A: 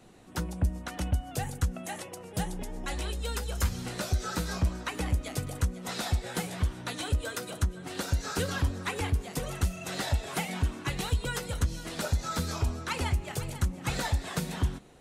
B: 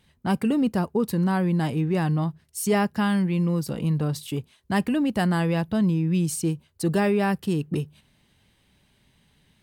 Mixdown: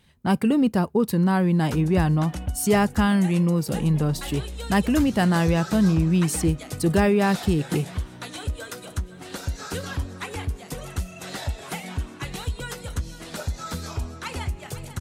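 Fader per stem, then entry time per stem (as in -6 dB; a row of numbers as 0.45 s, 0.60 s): -0.5 dB, +2.5 dB; 1.35 s, 0.00 s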